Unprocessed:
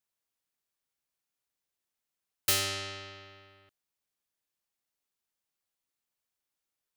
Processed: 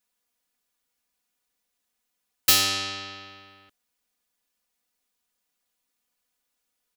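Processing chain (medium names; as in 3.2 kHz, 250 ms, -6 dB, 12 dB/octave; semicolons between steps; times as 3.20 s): comb 4.1 ms, depth 94%; trim +5.5 dB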